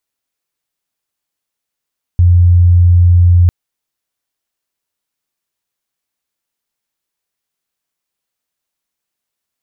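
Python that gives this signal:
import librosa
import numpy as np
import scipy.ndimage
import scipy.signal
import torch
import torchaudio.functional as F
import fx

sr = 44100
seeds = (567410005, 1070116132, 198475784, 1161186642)

y = 10.0 ** (-4.0 / 20.0) * np.sin(2.0 * np.pi * (88.0 * (np.arange(round(1.3 * sr)) / sr)))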